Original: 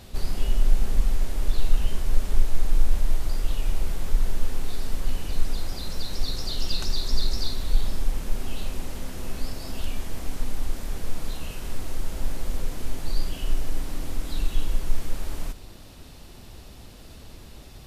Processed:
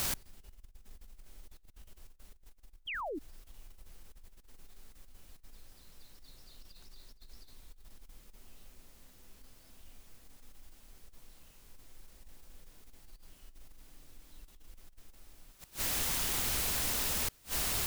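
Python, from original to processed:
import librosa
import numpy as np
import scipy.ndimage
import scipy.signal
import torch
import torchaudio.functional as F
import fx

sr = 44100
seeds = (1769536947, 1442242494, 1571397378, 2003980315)

y = fx.quant_dither(x, sr, seeds[0], bits=6, dither='triangular')
y = fx.over_compress(y, sr, threshold_db=-19.0, ratio=-0.5)
y = fx.gate_flip(y, sr, shuts_db=-25.0, range_db=-30)
y = fx.spec_paint(y, sr, seeds[1], shape='fall', start_s=2.87, length_s=0.32, low_hz=260.0, high_hz=3400.0, level_db=-38.0)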